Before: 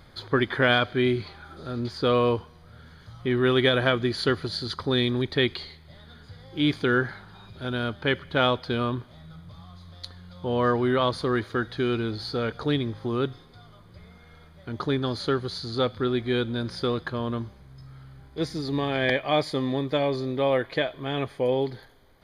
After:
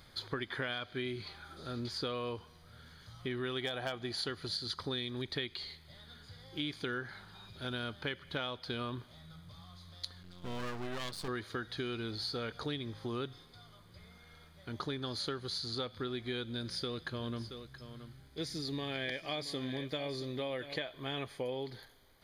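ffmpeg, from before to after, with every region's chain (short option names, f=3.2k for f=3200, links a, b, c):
-filter_complex "[0:a]asettb=1/sr,asplit=3[a][b][c];[a]atrim=end=3.614[d];[b]atrim=start=3.61:end=4.27,asetpts=PTS-STARTPTS,afade=t=in:d=0.004:c=qsin,afade=t=out:st=0.656:d=0.004:c=qsin,equalizer=f=760:t=o:w=0.45:g=12,asoftclip=type=hard:threshold=-9dB[e];[c]atrim=start=4.266[f];[d][e]acrossfade=d=0.004:c1=hsin:c2=qsin[g];[g][f]acrossfade=d=0.004:c1=qsin:c2=hsin,asettb=1/sr,asplit=3[h][i][j];[h]atrim=end=10.234[k];[i]atrim=start=10.23:end=11.28,asetpts=PTS-STARTPTS,afade=t=in:d=0.004:c=qsin,afade=t=out:st=1.046:d=0.004:c=qsin,equalizer=f=190:w=5.7:g=8.5,aeval=exprs='max(val(0),0)':c=same[l];[j]atrim=start=11.276[m];[k][l]acrossfade=d=0.004:c1=hsin:c2=qsin[n];[n][m]acrossfade=d=0.004:c1=qsin:c2=hsin,asettb=1/sr,asplit=3[o][p][q];[o]atrim=end=16.444[r];[p]atrim=start=16.44:end=20.76,asetpts=PTS-STARTPTS,afade=t=in:d=0.004:c=qsin,afade=t=out:st=4.316:d=0.004:c=qsin,equalizer=f=960:w=1.3:g=-5,aecho=1:1:675:0.211,atrim=end_sample=190512[s];[q]atrim=start=20.756[t];[r][s]acrossfade=d=0.004:c1=hsin:c2=qsin[u];[u][t]acrossfade=d=0.004:c1=qsin:c2=hsin,highshelf=f=2.3k:g=10.5,acompressor=threshold=-26dB:ratio=6,volume=-8.5dB"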